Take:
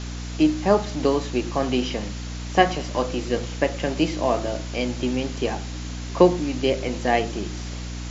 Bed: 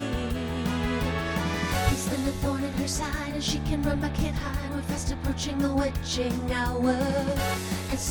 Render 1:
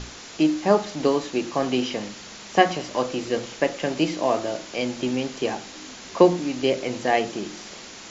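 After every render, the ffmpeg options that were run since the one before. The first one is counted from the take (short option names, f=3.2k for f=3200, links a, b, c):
-af "bandreject=f=60:t=h:w=6,bandreject=f=120:t=h:w=6,bandreject=f=180:t=h:w=6,bandreject=f=240:t=h:w=6,bandreject=f=300:t=h:w=6"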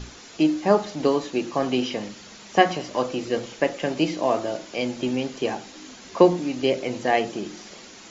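-af "afftdn=nr=6:nf=-41"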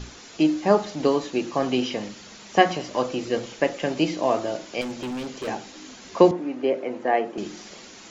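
-filter_complex "[0:a]asettb=1/sr,asplit=3[a][b][c];[a]atrim=end=4.814[d];[b]atrim=start=4.81:end=5.48,asetpts=PTS-STARTPTS,afade=t=in:d=0.004:c=qsin,afade=t=out:st=0.666:d=0.004:c=qsin,asoftclip=type=hard:threshold=-28dB[e];[c]atrim=start=5.476[f];[d][e]acrossfade=d=0.004:c1=hsin:c2=qsin[g];[g][f]acrossfade=d=0.004:c1=qsin:c2=hsin,asettb=1/sr,asplit=3[h][i][j];[h]atrim=end=6.314[k];[i]atrim=start=6.31:end=7.38,asetpts=PTS-STARTPTS,afade=t=in:d=0.004:c=qsin,afade=t=out:st=1.066:d=0.004:c=qsin,acrossover=split=210 2100:gain=0.0708 1 0.126[l][m][n];[l][m][n]amix=inputs=3:normalize=0[o];[j]atrim=start=7.376[p];[k][o]acrossfade=d=0.004:c1=hsin:c2=qsin[q];[q][p]acrossfade=d=0.004:c1=qsin:c2=hsin"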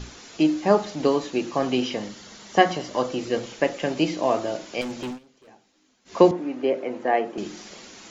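-filter_complex "[0:a]asettb=1/sr,asplit=3[a][b][c];[a]atrim=end=1.954[d];[b]atrim=start=1.95:end=3.18,asetpts=PTS-STARTPTS,afade=t=in:d=0.004:c=qsin,afade=t=out:st=1.226:d=0.004:c=qsin,bandreject=f=2.5k:w=10[e];[c]atrim=start=3.176[f];[d][e]acrossfade=d=0.004:c1=hsin:c2=qsin[g];[g][f]acrossfade=d=0.004:c1=qsin:c2=hsin,asplit=3[h][i][j];[h]atrim=end=5.19,asetpts=PTS-STARTPTS,afade=t=out:st=5.06:d=0.13:c=qsin:silence=0.0749894[k];[i]atrim=start=5.19:end=6.05,asetpts=PTS-STARTPTS,volume=-22.5dB[l];[j]atrim=start=6.05,asetpts=PTS-STARTPTS,afade=t=in:d=0.13:c=qsin:silence=0.0749894[m];[k][l][m]concat=n=3:v=0:a=1"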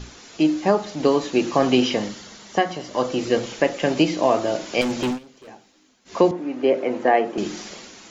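-af "dynaudnorm=f=110:g=9:m=9dB,alimiter=limit=-6dB:level=0:latency=1:release=407"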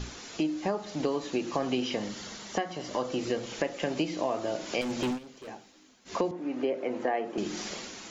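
-af "acompressor=threshold=-30dB:ratio=3"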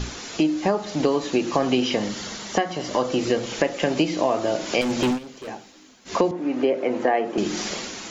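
-af "volume=8.5dB"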